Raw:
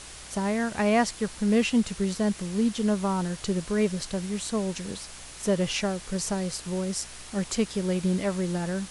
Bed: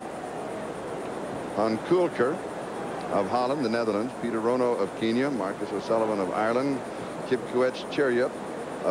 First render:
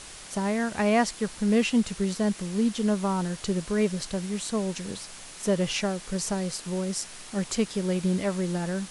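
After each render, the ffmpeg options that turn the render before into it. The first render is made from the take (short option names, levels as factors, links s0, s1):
-af "bandreject=f=60:t=h:w=4,bandreject=f=120:t=h:w=4"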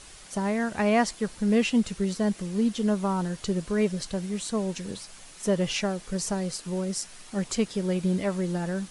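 -af "afftdn=nr=6:nf=-44"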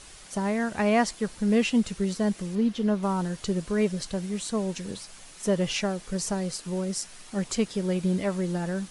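-filter_complex "[0:a]asettb=1/sr,asplit=3[s0][s1][s2];[s0]atrim=end=2.554[s3];[s1]atrim=start=2.55:end=3.03,asetpts=PTS-STARTPTS,afade=t=in:d=0.004:c=qsin,afade=t=out:st=0.476:d=0.004:c=qsin,equalizer=f=8500:t=o:w=1.2:g=-10.5[s4];[s2]atrim=start=3.026[s5];[s3][s4]acrossfade=d=0.004:c1=hsin:c2=qsin[s6];[s6][s5]acrossfade=d=0.004:c1=qsin:c2=hsin"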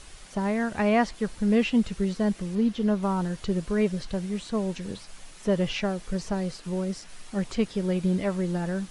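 -filter_complex "[0:a]acrossover=split=4300[s0][s1];[s1]acompressor=threshold=0.00316:ratio=4:attack=1:release=60[s2];[s0][s2]amix=inputs=2:normalize=0,lowshelf=f=62:g=8.5"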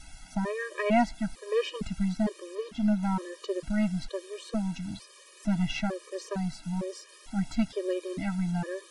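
-af "aeval=exprs='0.282*(cos(1*acos(clip(val(0)/0.282,-1,1)))-cos(1*PI/2))+0.0178*(cos(6*acos(clip(val(0)/0.282,-1,1)))-cos(6*PI/2))':c=same,afftfilt=real='re*gt(sin(2*PI*1.1*pts/sr)*(1-2*mod(floor(b*sr/1024/320),2)),0)':imag='im*gt(sin(2*PI*1.1*pts/sr)*(1-2*mod(floor(b*sr/1024/320),2)),0)':win_size=1024:overlap=0.75"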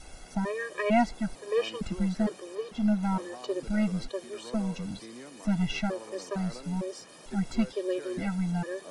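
-filter_complex "[1:a]volume=0.0944[s0];[0:a][s0]amix=inputs=2:normalize=0"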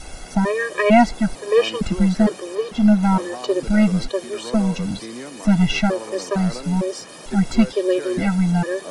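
-af "volume=3.76,alimiter=limit=0.794:level=0:latency=1"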